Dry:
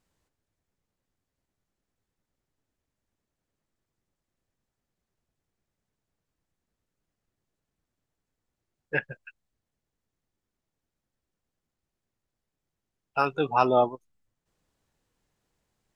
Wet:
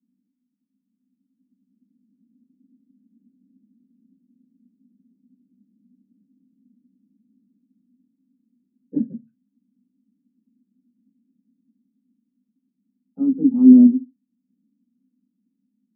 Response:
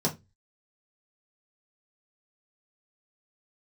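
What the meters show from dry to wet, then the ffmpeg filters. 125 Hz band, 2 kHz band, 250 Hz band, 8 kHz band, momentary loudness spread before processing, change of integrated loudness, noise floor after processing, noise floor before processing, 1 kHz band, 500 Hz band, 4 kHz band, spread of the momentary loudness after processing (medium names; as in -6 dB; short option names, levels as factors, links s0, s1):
-1.0 dB, under -40 dB, +23.0 dB, no reading, 11 LU, +10.5 dB, -77 dBFS, under -85 dBFS, under -30 dB, -9.0 dB, under -30 dB, 19 LU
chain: -filter_complex "[0:a]dynaudnorm=f=280:g=13:m=6.68,asuperpass=centerf=240:order=4:qfactor=5[s0];[1:a]atrim=start_sample=2205,asetrate=52920,aresample=44100[s1];[s0][s1]afir=irnorm=-1:irlink=0,volume=1.41"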